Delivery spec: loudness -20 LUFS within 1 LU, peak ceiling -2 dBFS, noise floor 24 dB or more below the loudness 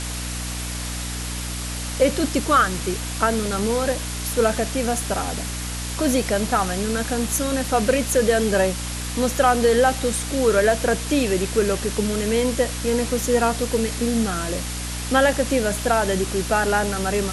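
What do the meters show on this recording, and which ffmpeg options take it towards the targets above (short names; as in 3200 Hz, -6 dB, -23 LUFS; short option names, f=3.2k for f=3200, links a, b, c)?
hum 60 Hz; harmonics up to 300 Hz; hum level -28 dBFS; noise floor -29 dBFS; noise floor target -46 dBFS; loudness -21.5 LUFS; peak -5.5 dBFS; loudness target -20.0 LUFS
-> -af "bandreject=f=60:t=h:w=6,bandreject=f=120:t=h:w=6,bandreject=f=180:t=h:w=6,bandreject=f=240:t=h:w=6,bandreject=f=300:t=h:w=6"
-af "afftdn=nr=17:nf=-29"
-af "volume=1.5dB"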